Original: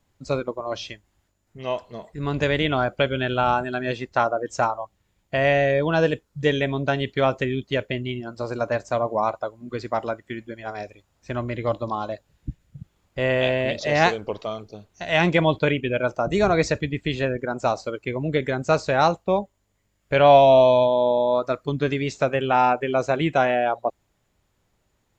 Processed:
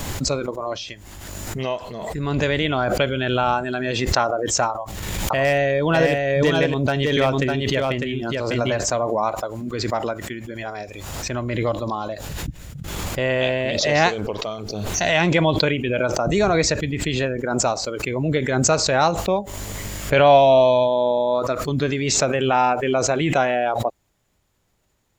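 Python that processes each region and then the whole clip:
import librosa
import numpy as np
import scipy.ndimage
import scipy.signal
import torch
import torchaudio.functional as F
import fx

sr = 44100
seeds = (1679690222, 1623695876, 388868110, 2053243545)

y = fx.chain(x, sr, fx.clip_hard(threshold_db=-11.5),
    fx.echo_single(ms=602, db=-3.5),
    fx.pre_swell(db_per_s=64.0), at=(4.7, 8.79))
y = fx.high_shelf(y, sr, hz=5100.0, db=5.5)
y = fx.pre_swell(y, sr, db_per_s=28.0)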